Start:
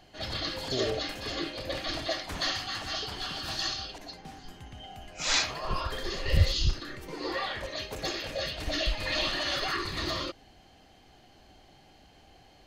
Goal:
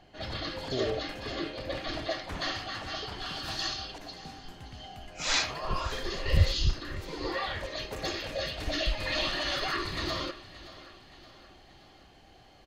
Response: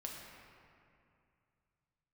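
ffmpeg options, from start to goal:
-af "asetnsamples=n=441:p=0,asendcmd='3.26 highshelf g -3.5',highshelf=f=4.8k:g=-11.5,aecho=1:1:573|1146|1719|2292|2865:0.141|0.0735|0.0382|0.0199|0.0103"

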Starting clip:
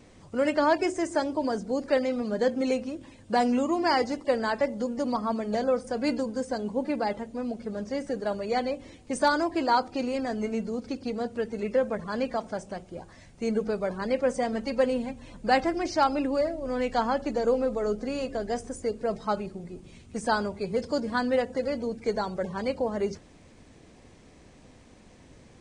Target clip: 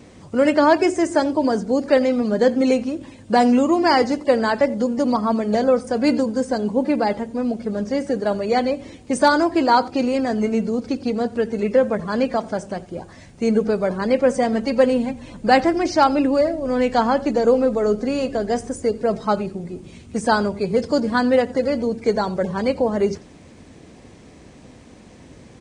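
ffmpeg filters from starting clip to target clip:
-filter_complex "[0:a]highpass=40,equalizer=f=240:t=o:w=2.1:g=3,asplit=2[a][b];[b]aecho=0:1:88:0.0794[c];[a][c]amix=inputs=2:normalize=0,volume=7dB"

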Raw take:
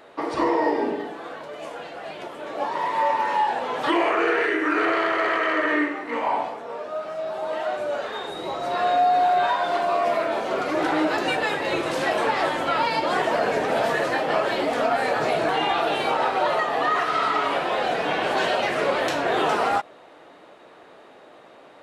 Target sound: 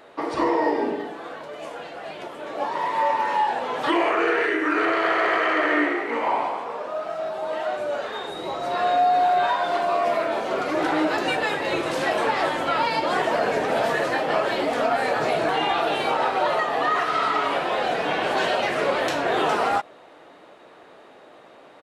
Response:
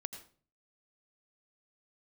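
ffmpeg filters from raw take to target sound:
-filter_complex "[0:a]asplit=3[a][b][c];[a]afade=t=out:st=5.02:d=0.02[d];[b]asplit=7[e][f][g][h][i][j][k];[f]adelay=136,afreqshift=55,volume=-5.5dB[l];[g]adelay=272,afreqshift=110,volume=-12.1dB[m];[h]adelay=408,afreqshift=165,volume=-18.6dB[n];[i]adelay=544,afreqshift=220,volume=-25.2dB[o];[j]adelay=680,afreqshift=275,volume=-31.7dB[p];[k]adelay=816,afreqshift=330,volume=-38.3dB[q];[e][l][m][n][o][p][q]amix=inputs=7:normalize=0,afade=t=in:st=5.02:d=0.02,afade=t=out:st=7.28:d=0.02[r];[c]afade=t=in:st=7.28:d=0.02[s];[d][r][s]amix=inputs=3:normalize=0"

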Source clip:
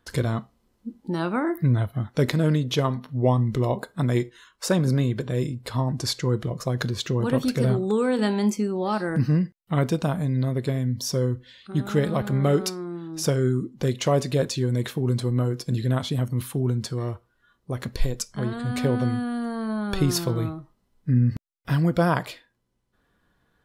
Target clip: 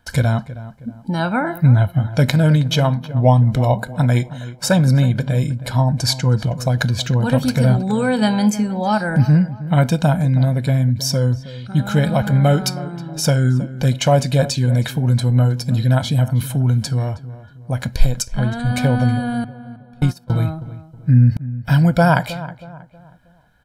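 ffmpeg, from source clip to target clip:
-filter_complex "[0:a]asettb=1/sr,asplit=3[a][b][c];[a]atrim=end=19.444[d];[b]atrim=start=19.44:end=20.3,asetpts=PTS-STARTPTS,afade=t=in:d=0.004:c=qsin,afade=t=out:st=0.856:d=0.004:c=qsin,agate=range=-35dB:threshold=-19dB:ratio=16:detection=peak[e];[c]atrim=start=20.296[f];[d][e]acrossfade=d=0.004:c1=hsin:c2=qsin[g];[g][f]acrossfade=d=0.004:c1=qsin:c2=hsin,aecho=1:1:1.3:0.76,asplit=2[h][i];[i]adelay=318,lowpass=f=1.8k:p=1,volume=-15dB,asplit=2[j][k];[k]adelay=318,lowpass=f=1.8k:p=1,volume=0.39,asplit=2[l][m];[m]adelay=318,lowpass=f=1.8k:p=1,volume=0.39,asplit=2[n][o];[o]adelay=318,lowpass=f=1.8k:p=1,volume=0.39[p];[j][l][n][p]amix=inputs=4:normalize=0[q];[h][q]amix=inputs=2:normalize=0,volume=5.5dB"

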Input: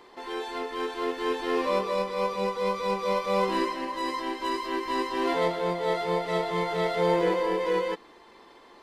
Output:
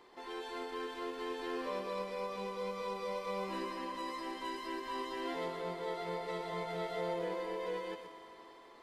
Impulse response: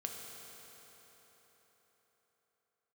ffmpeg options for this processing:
-filter_complex "[0:a]acompressor=threshold=-32dB:ratio=2,asplit=2[a][b];[1:a]atrim=start_sample=2205,highshelf=f=8.4k:g=8.5,adelay=123[c];[b][c]afir=irnorm=-1:irlink=0,volume=-5.5dB[d];[a][d]amix=inputs=2:normalize=0,volume=-8dB"

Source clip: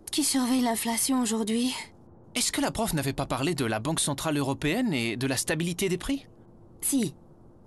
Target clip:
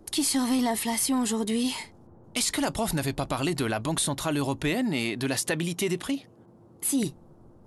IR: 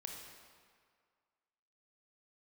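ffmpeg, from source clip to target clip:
-filter_complex "[0:a]asettb=1/sr,asplit=3[a][b][c];[a]atrim=end=4.754[d];[b]atrim=start=4.75:end=7.03,asetpts=PTS-STARTPTS,afade=t=in:d=0.004:c=qsin,afade=t=out:st=2.276:d=0.004:c=qsin,highpass=110[e];[c]atrim=start=7.026[f];[d][e]acrossfade=d=0.004:c1=hsin:c2=qsin[g];[g][f]acrossfade=d=0.004:c1=qsin:c2=hsin"

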